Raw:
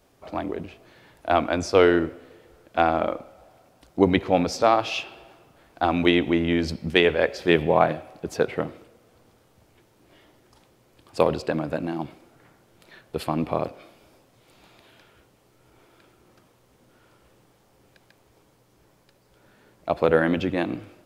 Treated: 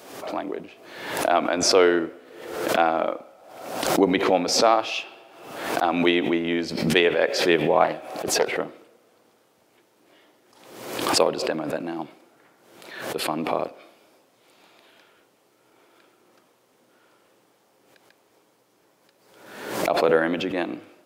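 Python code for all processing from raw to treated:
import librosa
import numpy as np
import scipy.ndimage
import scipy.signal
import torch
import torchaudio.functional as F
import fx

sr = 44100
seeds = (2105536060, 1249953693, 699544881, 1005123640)

y = fx.chain(x, sr, fx.high_shelf(hz=4200.0, db=5.0),
    fx.doppler_dist(depth_ms=0.28), at=(7.84, 8.52))
y = scipy.signal.sosfilt(scipy.signal.butter(2, 270.0, 'highpass', fs=sr, output='sos'), y)
y = fx.pre_swell(y, sr, db_per_s=59.0)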